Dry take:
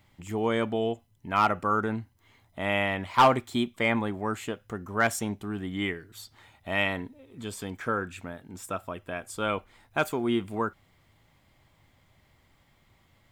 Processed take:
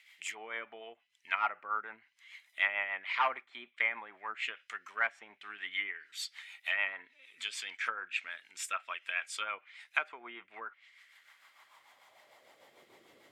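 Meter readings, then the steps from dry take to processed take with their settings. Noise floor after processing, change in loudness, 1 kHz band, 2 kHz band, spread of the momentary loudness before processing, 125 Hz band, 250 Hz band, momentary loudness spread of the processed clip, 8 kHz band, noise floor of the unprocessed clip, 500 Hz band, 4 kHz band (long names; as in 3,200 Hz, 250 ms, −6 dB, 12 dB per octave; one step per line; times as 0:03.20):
−71 dBFS, −7.0 dB, −10.0 dB, −1.5 dB, 15 LU, below −40 dB, −31.0 dB, 16 LU, −5.0 dB, −65 dBFS, −18.5 dB, −4.5 dB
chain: treble cut that deepens with the level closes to 890 Hz, closed at −25.5 dBFS
dynamic equaliser 980 Hz, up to +3 dB, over −38 dBFS, Q 1.1
rotating-speaker cabinet horn 6.7 Hz
high-pass filter sweep 2,200 Hz → 390 Hz, 0:10.83–0:12.93
level +6.5 dB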